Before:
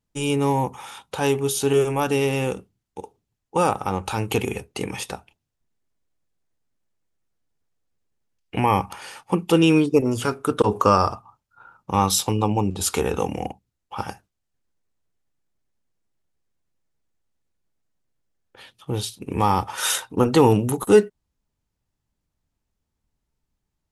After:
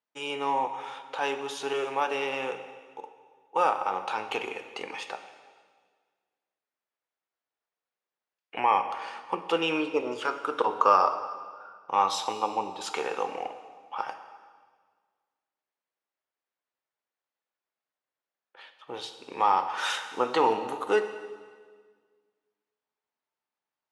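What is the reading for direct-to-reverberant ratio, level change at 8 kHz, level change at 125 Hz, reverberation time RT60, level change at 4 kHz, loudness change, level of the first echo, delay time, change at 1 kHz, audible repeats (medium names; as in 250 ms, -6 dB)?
7.5 dB, -16.0 dB, -28.0 dB, 1.6 s, -6.0 dB, -7.0 dB, no echo, no echo, -1.5 dB, no echo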